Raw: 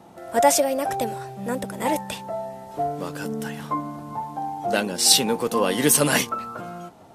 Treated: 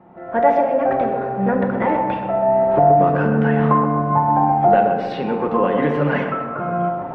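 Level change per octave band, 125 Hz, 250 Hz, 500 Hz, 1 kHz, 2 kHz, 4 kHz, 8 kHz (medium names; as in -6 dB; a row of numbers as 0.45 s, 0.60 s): +12.0 dB, +7.5 dB, +8.0 dB, +9.5 dB, +2.5 dB, under -15 dB, under -40 dB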